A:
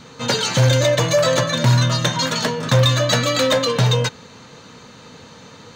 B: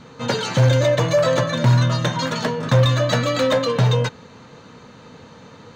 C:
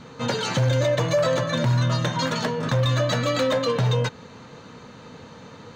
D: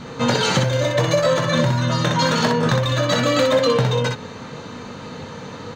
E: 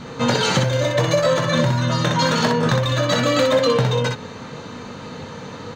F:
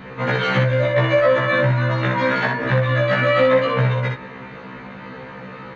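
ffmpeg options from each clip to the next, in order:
-af "highshelf=f=3k:g=-10.5"
-af "alimiter=limit=-13.5dB:level=0:latency=1:release=214"
-af "acompressor=threshold=-23dB:ratio=6,aecho=1:1:21|62:0.376|0.596,volume=7.5dB"
-af anull
-af "lowpass=f=2.1k:t=q:w=2.3,afftfilt=real='re*1.73*eq(mod(b,3),0)':imag='im*1.73*eq(mod(b,3),0)':win_size=2048:overlap=0.75"

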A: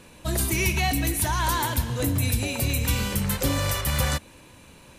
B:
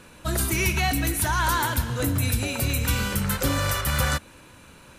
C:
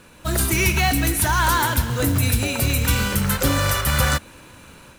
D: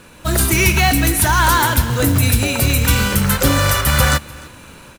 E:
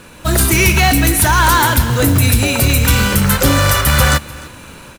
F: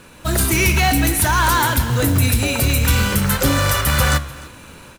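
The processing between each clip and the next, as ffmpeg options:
-af "equalizer=f=1.4k:w=3.5:g=8.5"
-af "acrusher=bits=4:mode=log:mix=0:aa=0.000001,dynaudnorm=f=180:g=3:m=4.5dB"
-af "aecho=1:1:300:0.0708,volume=5dB"
-af "asoftclip=type=tanh:threshold=-7dB,volume=4dB"
-af "flanger=delay=7.3:depth=7.4:regen=87:speed=0.57:shape=sinusoidal"

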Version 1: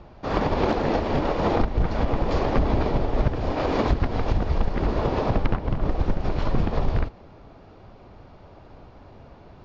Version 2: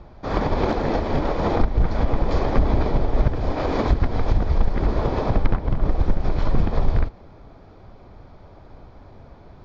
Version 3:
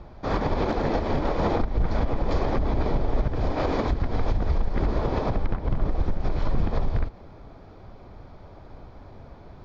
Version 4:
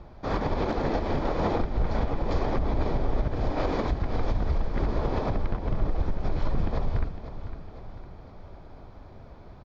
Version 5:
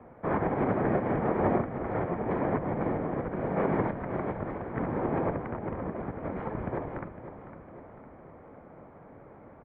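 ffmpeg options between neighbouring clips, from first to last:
-af "lowshelf=f=71:g=6,bandreject=f=2.8k:w=8.8"
-af "alimiter=limit=-14dB:level=0:latency=1:release=136"
-af "aecho=1:1:506|1012|1518|2024|2530|3036:0.251|0.133|0.0706|0.0374|0.0198|0.0105,volume=-2.5dB"
-af "highpass=f=210:t=q:w=0.5412,highpass=f=210:t=q:w=1.307,lowpass=f=2.3k:t=q:w=0.5176,lowpass=f=2.3k:t=q:w=0.7071,lowpass=f=2.3k:t=q:w=1.932,afreqshift=-110,volume=2dB"

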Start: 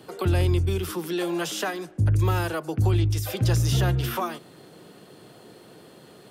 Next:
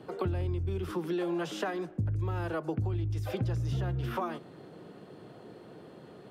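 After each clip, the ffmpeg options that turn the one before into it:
-af "lowpass=f=1.3k:p=1,acompressor=threshold=-28dB:ratio=12"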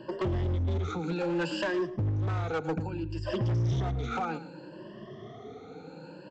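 -af "afftfilt=real='re*pow(10,21/40*sin(2*PI*(1.3*log(max(b,1)*sr/1024/100)/log(2)-(0.63)*(pts-256)/sr)))':imag='im*pow(10,21/40*sin(2*PI*(1.3*log(max(b,1)*sr/1024/100)/log(2)-(0.63)*(pts-256)/sr)))':win_size=1024:overlap=0.75,aresample=16000,asoftclip=type=hard:threshold=-26dB,aresample=44100,aecho=1:1:111:0.158"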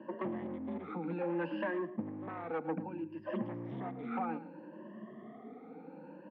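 -af "highpass=f=210:w=0.5412,highpass=f=210:w=1.3066,equalizer=f=220:t=q:w=4:g=7,equalizer=f=400:t=q:w=4:g=-10,equalizer=f=670:t=q:w=4:g=-4,equalizer=f=1.4k:t=q:w=4:g=-9,lowpass=f=2k:w=0.5412,lowpass=f=2k:w=1.3066,volume=-1.5dB"

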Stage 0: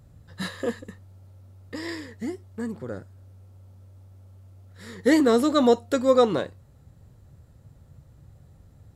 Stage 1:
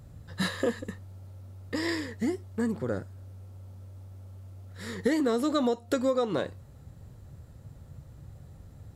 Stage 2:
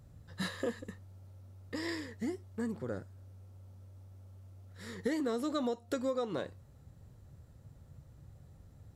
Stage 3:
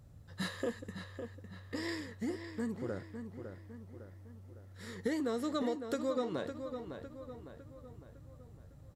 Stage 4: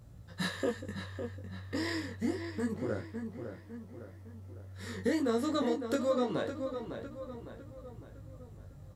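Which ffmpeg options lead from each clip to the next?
-af "acompressor=threshold=-26dB:ratio=16,volume=3.5dB"
-af "equalizer=f=5.8k:w=7.3:g=2.5,volume=-7.5dB"
-filter_complex "[0:a]asplit=2[a][b];[b]adelay=556,lowpass=f=4k:p=1,volume=-8dB,asplit=2[c][d];[d]adelay=556,lowpass=f=4k:p=1,volume=0.49,asplit=2[e][f];[f]adelay=556,lowpass=f=4k:p=1,volume=0.49,asplit=2[g][h];[h]adelay=556,lowpass=f=4k:p=1,volume=0.49,asplit=2[i][j];[j]adelay=556,lowpass=f=4k:p=1,volume=0.49,asplit=2[k][l];[l]adelay=556,lowpass=f=4k:p=1,volume=0.49[m];[a][c][e][g][i][k][m]amix=inputs=7:normalize=0,volume=-1dB"
-af "flanger=delay=17:depth=4.9:speed=0.27,volume=7dB"

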